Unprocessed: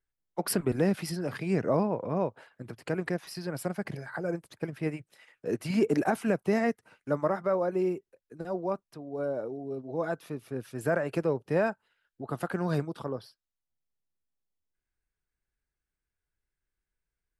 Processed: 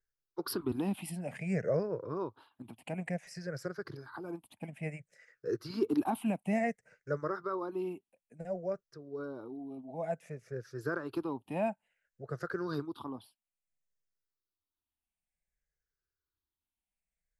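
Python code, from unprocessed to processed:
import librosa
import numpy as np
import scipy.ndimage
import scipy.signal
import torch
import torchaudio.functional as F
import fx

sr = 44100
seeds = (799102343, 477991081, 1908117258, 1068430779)

y = fx.spec_ripple(x, sr, per_octave=0.55, drift_hz=-0.57, depth_db=17)
y = F.gain(torch.from_numpy(y), -9.0).numpy()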